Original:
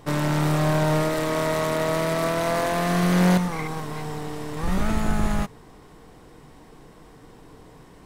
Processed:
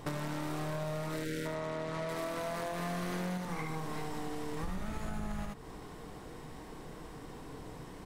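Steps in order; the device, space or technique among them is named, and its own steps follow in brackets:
0:01.17–0:01.46: gain on a spectral selection 600–1,300 Hz −27 dB
0:01.47–0:02.09: high-frequency loss of the air 64 metres
single-tap delay 76 ms −5.5 dB
serial compression, leveller first (downward compressor 2.5 to 1, threshold −23 dBFS, peak gain reduction 6.5 dB; downward compressor 5 to 1, threshold −35 dBFS, peak gain reduction 13 dB)

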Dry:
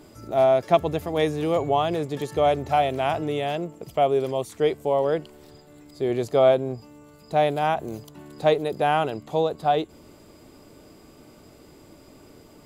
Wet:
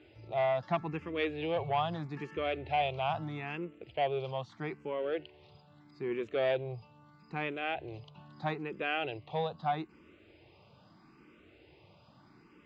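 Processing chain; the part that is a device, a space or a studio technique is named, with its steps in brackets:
barber-pole phaser into a guitar amplifier (frequency shifter mixed with the dry sound +0.78 Hz; soft clipping −14.5 dBFS, distortion −18 dB; loudspeaker in its box 80–4,000 Hz, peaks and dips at 260 Hz −8 dB, 430 Hz −5 dB, 620 Hz −6 dB, 2,600 Hz +7 dB)
level −4 dB

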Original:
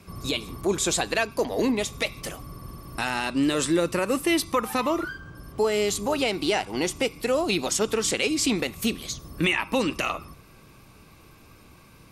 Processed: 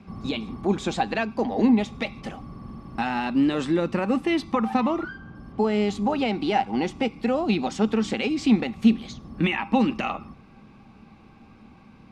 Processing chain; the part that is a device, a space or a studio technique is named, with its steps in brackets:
inside a cardboard box (low-pass filter 3,400 Hz 12 dB per octave; hollow resonant body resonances 220/790 Hz, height 14 dB, ringing for 60 ms)
level −2.5 dB

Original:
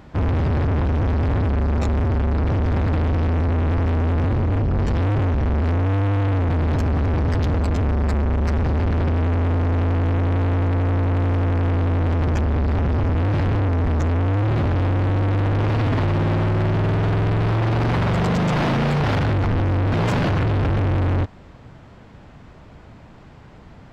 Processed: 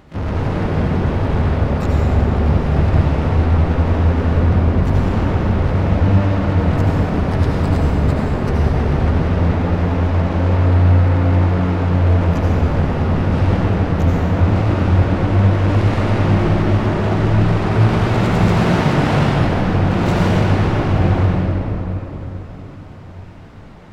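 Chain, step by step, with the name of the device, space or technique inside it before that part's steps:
shimmer-style reverb (pitch-shifted copies added +12 semitones −9 dB; convolution reverb RT60 3.8 s, pre-delay 69 ms, DRR −5 dB)
level −2.5 dB

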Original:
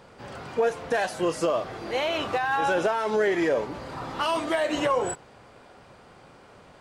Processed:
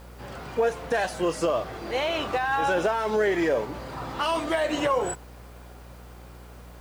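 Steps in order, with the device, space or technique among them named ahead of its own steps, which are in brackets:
video cassette with head-switching buzz (hum with harmonics 60 Hz, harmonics 39, −46 dBFS −8 dB per octave; white noise bed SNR 33 dB)

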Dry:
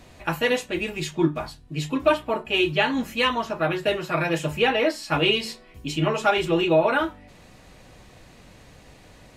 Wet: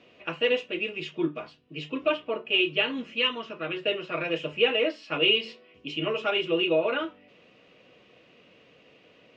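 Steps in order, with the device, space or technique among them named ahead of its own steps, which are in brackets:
kitchen radio (loudspeaker in its box 230–4,500 Hz, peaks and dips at 470 Hz +6 dB, 850 Hz −10 dB, 1,700 Hz −5 dB, 2,800 Hz +9 dB, 4,200 Hz −7 dB)
0:02.95–0:03.77: dynamic equaliser 650 Hz, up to −6 dB, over −37 dBFS, Q 1.2
level −5.5 dB

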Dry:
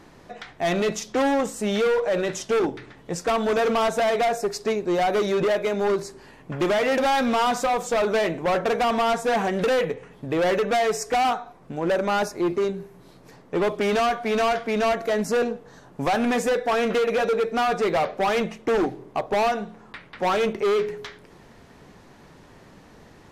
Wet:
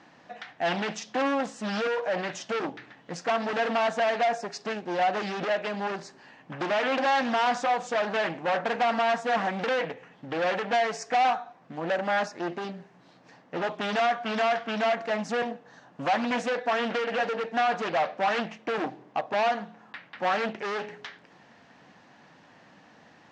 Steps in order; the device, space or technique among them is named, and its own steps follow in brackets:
full-range speaker at full volume (highs frequency-modulated by the lows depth 0.64 ms; loudspeaker in its box 180–6,600 Hz, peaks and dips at 400 Hz −10 dB, 760 Hz +4 dB, 1,700 Hz +5 dB, 2,800 Hz +4 dB)
level −4.5 dB

